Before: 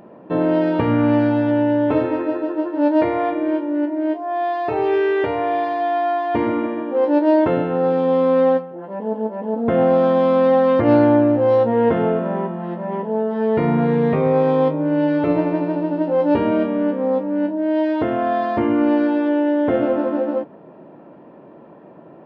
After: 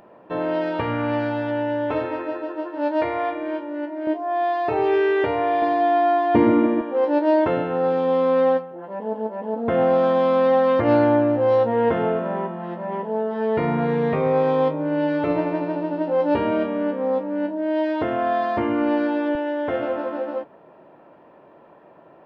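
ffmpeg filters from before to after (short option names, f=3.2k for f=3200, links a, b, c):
-af "asetnsamples=n=441:p=0,asendcmd='4.07 equalizer g -2;5.62 equalizer g 5.5;6.81 equalizer g -6;19.35 equalizer g -12.5',equalizer=f=210:t=o:w=2.3:g=-11.5"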